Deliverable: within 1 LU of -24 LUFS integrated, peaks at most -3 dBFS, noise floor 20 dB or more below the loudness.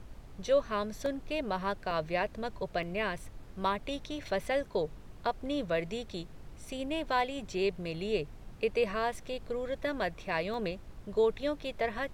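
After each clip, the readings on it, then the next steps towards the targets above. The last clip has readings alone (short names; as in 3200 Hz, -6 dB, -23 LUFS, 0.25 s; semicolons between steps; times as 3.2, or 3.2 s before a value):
dropouts 4; longest dropout 1.3 ms; noise floor -50 dBFS; noise floor target -54 dBFS; loudness -34.0 LUFS; peak -17.5 dBFS; loudness target -24.0 LUFS
-> interpolate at 1.06/1.91/2.83/10.54, 1.3 ms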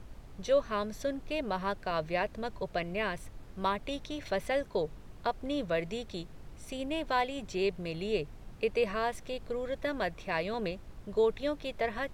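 dropouts 0; noise floor -50 dBFS; noise floor target -54 dBFS
-> noise print and reduce 6 dB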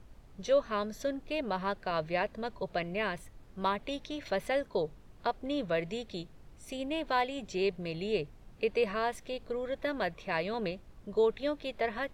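noise floor -55 dBFS; loudness -34.0 LUFS; peak -17.5 dBFS; loudness target -24.0 LUFS
-> gain +10 dB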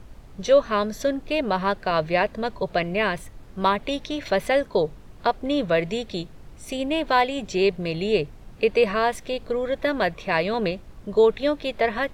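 loudness -24.0 LUFS; peak -7.5 dBFS; noise floor -45 dBFS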